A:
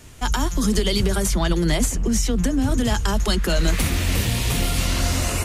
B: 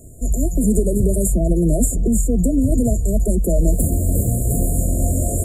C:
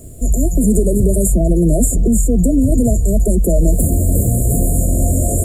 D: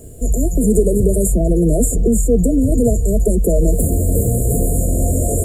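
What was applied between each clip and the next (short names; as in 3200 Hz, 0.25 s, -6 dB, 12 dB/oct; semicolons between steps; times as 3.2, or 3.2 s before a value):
FFT band-reject 710–6800 Hz; gain +4 dB
in parallel at -0.5 dB: limiter -14 dBFS, peak gain reduction 9 dB; on the sum: requantised 10-bit, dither triangular
small resonant body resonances 460/810/1600/2900 Hz, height 10 dB; gain -2 dB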